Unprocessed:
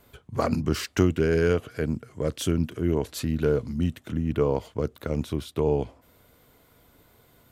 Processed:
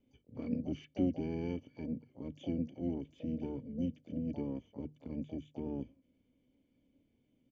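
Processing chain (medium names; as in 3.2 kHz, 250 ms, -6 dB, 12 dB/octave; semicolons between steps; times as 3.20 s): cascade formant filter i; hum notches 50/100/150 Hz; harmony voices -5 st -13 dB, +12 st -13 dB; trim -5 dB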